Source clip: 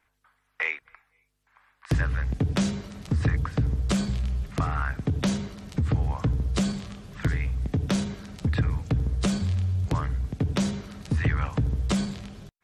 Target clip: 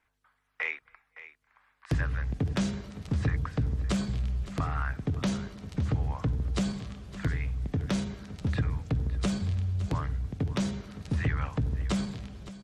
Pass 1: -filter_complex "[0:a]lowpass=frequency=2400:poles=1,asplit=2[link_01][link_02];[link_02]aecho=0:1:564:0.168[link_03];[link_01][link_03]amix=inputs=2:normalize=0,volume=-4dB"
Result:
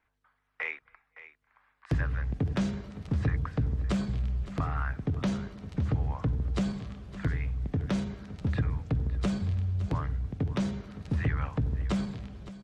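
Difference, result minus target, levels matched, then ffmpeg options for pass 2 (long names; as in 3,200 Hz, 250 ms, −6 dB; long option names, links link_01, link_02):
8,000 Hz band −7.0 dB
-filter_complex "[0:a]lowpass=frequency=8400:poles=1,asplit=2[link_01][link_02];[link_02]aecho=0:1:564:0.168[link_03];[link_01][link_03]amix=inputs=2:normalize=0,volume=-4dB"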